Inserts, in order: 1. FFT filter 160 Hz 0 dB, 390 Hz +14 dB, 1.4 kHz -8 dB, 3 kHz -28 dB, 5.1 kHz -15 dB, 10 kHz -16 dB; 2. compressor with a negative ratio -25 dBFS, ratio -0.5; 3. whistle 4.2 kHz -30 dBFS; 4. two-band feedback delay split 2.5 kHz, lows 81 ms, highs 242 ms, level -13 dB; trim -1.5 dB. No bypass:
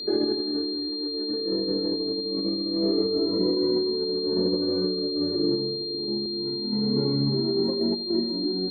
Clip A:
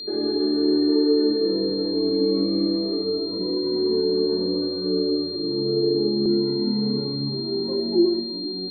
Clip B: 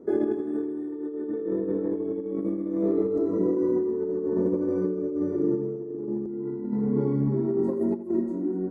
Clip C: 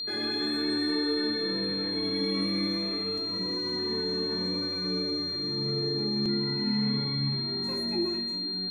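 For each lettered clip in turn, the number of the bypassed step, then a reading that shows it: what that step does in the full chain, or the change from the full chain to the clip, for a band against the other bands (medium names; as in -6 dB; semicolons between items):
2, momentary loudness spread change +1 LU; 3, momentary loudness spread change +3 LU; 1, momentary loudness spread change -2 LU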